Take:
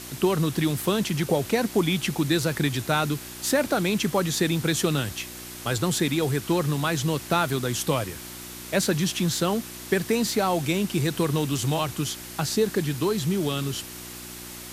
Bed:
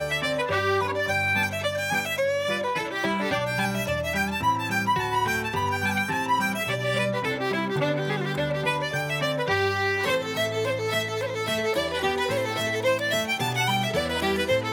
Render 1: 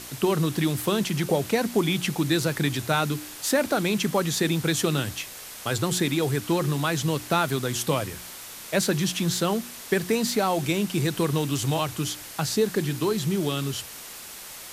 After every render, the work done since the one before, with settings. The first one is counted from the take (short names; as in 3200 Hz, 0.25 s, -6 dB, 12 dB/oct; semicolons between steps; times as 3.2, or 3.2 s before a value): de-hum 60 Hz, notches 6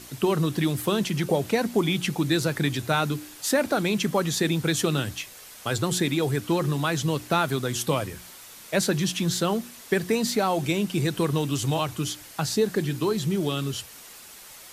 denoiser 6 dB, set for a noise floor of -41 dBFS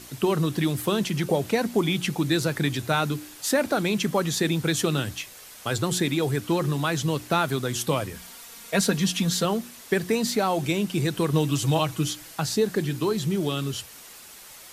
8.14–9.45 comb 4.3 ms; 11.33–12.35 comb 6.2 ms, depth 56%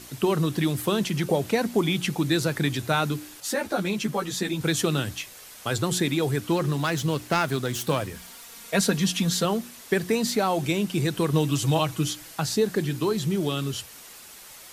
3.4–4.61 ensemble effect; 6.56–8.55 self-modulated delay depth 0.11 ms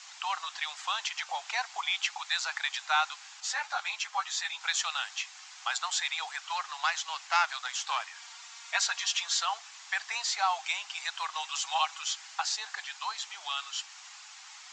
Chebyshev band-pass 770–7300 Hz, order 5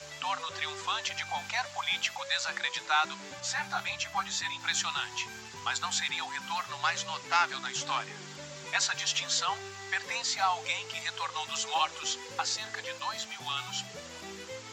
add bed -20 dB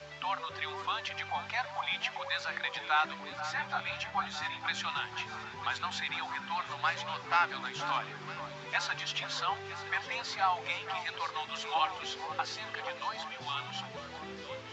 air absorption 210 m; echo with dull and thin repeats by turns 0.478 s, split 1700 Hz, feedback 78%, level -10.5 dB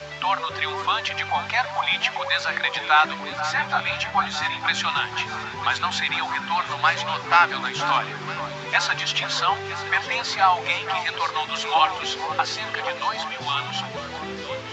gain +11.5 dB